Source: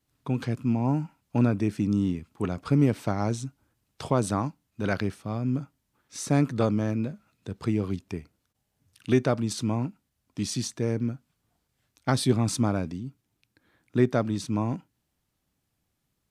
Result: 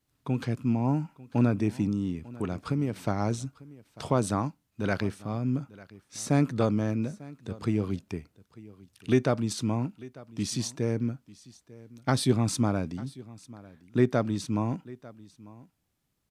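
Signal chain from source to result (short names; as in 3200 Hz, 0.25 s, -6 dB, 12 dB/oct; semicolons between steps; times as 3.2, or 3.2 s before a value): 1.88–2.96 compressor 3:1, threshold -25 dBFS, peak gain reduction 7.5 dB; on a send: echo 0.896 s -20.5 dB; on the sum: gain -1 dB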